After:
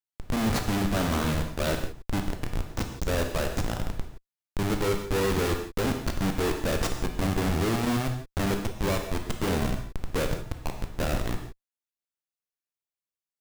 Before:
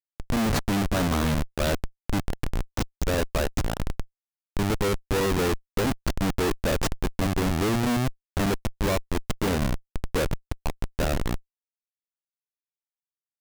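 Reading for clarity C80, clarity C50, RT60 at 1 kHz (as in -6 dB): 9.0 dB, 6.5 dB, no reading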